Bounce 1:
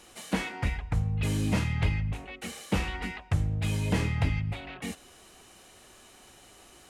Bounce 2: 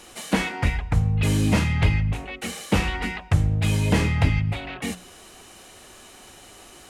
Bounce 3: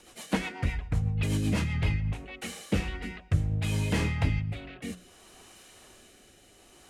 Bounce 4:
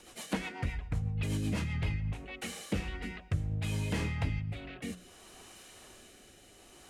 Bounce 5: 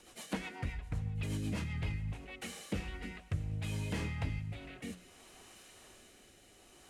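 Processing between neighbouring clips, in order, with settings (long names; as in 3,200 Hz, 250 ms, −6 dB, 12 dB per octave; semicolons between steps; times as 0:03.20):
mains-hum notches 60/120/180 Hz; level +7.5 dB
rotating-speaker cabinet horn 8 Hz, later 0.6 Hz, at 0:01.58; level −5.5 dB
downward compressor 1.5 to 1, threshold −39 dBFS, peak gain reduction 7.5 dB
feedback echo with a high-pass in the loop 328 ms, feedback 78%, level −20.5 dB; level −4 dB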